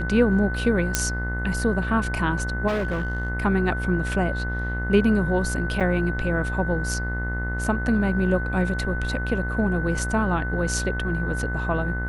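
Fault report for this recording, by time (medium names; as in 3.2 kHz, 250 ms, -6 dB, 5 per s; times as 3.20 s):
buzz 60 Hz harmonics 35 -28 dBFS
whine 1.5 kHz -30 dBFS
0.95 s: pop -3 dBFS
2.67–3.30 s: clipped -21.5 dBFS
5.80–5.81 s: dropout 7.3 ms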